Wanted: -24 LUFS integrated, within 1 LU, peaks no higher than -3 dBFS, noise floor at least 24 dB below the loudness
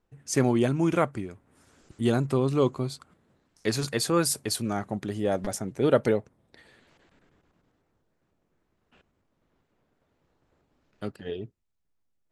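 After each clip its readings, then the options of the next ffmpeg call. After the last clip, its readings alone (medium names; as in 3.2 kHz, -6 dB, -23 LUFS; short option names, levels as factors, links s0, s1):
loudness -27.0 LUFS; peak level -8.5 dBFS; loudness target -24.0 LUFS
-> -af "volume=1.41"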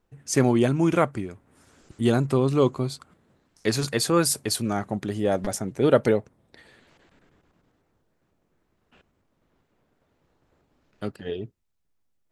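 loudness -24.0 LUFS; peak level -5.5 dBFS; noise floor -72 dBFS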